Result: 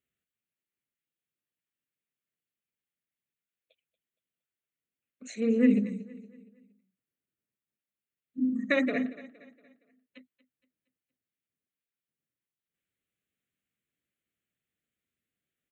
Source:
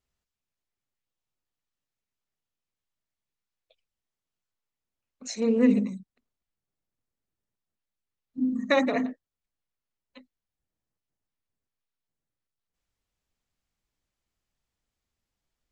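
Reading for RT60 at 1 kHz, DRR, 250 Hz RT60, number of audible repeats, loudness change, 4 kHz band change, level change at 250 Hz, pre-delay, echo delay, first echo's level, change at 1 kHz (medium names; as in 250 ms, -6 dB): no reverb, no reverb, no reverb, 3, -2.5 dB, -6.5 dB, -1.5 dB, no reverb, 233 ms, -18.0 dB, -11.5 dB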